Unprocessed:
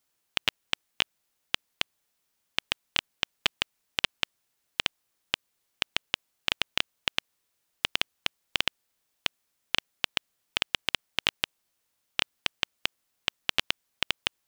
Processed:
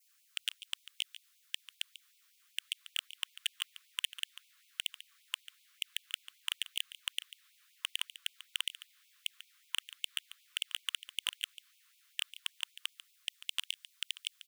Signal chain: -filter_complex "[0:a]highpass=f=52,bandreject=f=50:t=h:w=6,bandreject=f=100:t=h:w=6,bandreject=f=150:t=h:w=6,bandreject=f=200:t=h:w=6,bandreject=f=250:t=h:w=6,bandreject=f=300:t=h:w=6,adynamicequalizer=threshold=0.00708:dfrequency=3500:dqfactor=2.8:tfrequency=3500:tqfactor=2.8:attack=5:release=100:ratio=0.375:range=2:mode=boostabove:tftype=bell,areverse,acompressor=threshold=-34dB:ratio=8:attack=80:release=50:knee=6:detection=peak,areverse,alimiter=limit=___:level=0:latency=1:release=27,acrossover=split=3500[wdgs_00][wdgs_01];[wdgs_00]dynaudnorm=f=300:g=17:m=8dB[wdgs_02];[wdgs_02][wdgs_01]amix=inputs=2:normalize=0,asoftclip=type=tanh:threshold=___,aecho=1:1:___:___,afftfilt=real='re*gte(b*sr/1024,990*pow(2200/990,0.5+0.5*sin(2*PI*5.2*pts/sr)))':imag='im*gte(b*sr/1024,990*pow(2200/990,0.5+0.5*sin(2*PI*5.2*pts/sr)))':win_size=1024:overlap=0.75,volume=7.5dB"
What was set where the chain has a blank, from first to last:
-15dB, -27dB, 143, 0.188